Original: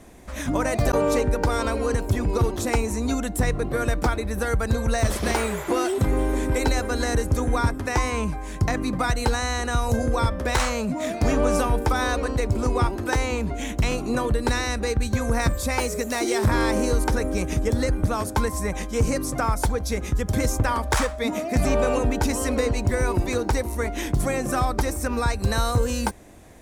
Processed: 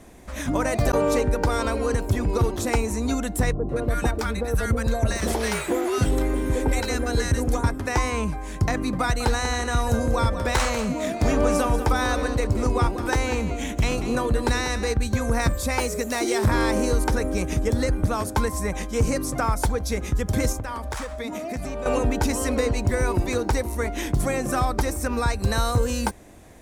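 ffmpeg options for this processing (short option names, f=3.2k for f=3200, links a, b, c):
-filter_complex "[0:a]asettb=1/sr,asplit=3[a][b][c];[a]atrim=end=3.524[d];[b]atrim=start=3.52:end=7.64,asetpts=PTS-STARTPTS,afade=t=in:d=0.004:c=qsin,afade=t=out:st=4.116:d=0.004:c=qsin,acrossover=split=950[e][f];[f]adelay=170[g];[e][g]amix=inputs=2:normalize=0,atrim=end_sample=181692[h];[c]atrim=start=7.636[i];[d][h]acrossfade=d=0.004:c1=hsin:c2=qsin[j];[j][i]acrossfade=d=0.004:c1=qsin:c2=hsin,asettb=1/sr,asplit=3[k][l][m];[k]atrim=end=9.014[n];[l]atrim=start=9.01:end=14.94,asetpts=PTS-STARTPTS,afade=t=in:d=0.004:c=qsin,afade=t=out:st=5.926:d=0.004:c=qsin,aecho=1:1:191:0.282,atrim=end_sample=261513[o];[m]atrim=start=14.936[p];[n][o]acrossfade=d=0.004:c1=hsin:c2=qsin[q];[q][p]acrossfade=d=0.004:c1=qsin:c2=hsin,asettb=1/sr,asplit=3[r][s][t];[r]atrim=end=20.524[u];[s]atrim=start=20.52:end=21.86,asetpts=PTS-STARTPTS,afade=t=in:d=0.004:c=qsin,afade=t=out:st=1.336:d=0.004:c=qsin,acompressor=threshold=-27dB:ratio=6:attack=3.2:release=140:knee=1:detection=peak[v];[t]atrim=start=21.856[w];[u][v]acrossfade=d=0.004:c1=hsin:c2=qsin[x];[x][w]acrossfade=d=0.004:c1=qsin:c2=hsin"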